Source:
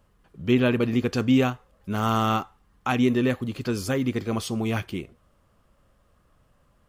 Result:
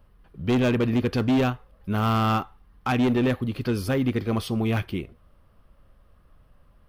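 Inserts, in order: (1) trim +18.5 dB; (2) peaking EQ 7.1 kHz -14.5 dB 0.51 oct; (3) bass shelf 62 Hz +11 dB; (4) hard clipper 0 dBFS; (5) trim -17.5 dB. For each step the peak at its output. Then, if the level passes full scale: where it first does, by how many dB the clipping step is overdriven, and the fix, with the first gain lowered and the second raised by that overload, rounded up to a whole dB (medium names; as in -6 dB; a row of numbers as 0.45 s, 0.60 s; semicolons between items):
+10.5 dBFS, +10.0 dBFS, +9.0 dBFS, 0.0 dBFS, -17.5 dBFS; step 1, 9.0 dB; step 1 +9.5 dB, step 5 -8.5 dB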